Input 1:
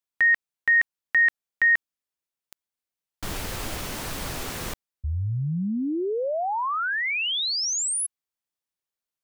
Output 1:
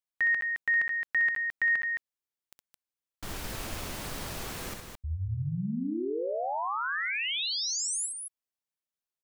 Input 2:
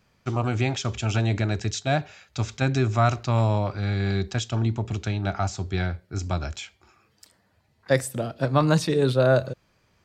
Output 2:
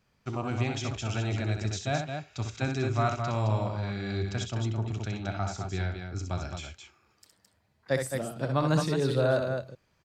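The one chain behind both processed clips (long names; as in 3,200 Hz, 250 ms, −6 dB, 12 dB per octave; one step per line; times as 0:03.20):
loudspeakers that aren't time-aligned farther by 22 metres −6 dB, 74 metres −6 dB
level −7 dB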